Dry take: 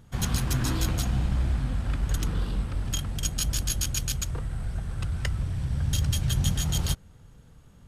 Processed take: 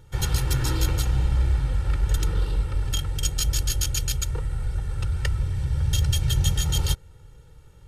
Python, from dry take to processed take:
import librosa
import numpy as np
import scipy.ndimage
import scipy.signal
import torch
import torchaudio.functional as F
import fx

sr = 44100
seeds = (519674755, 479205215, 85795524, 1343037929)

y = fx.notch(x, sr, hz=1000.0, q=19.0)
y = y + 0.87 * np.pad(y, (int(2.2 * sr / 1000.0), 0))[:len(y)]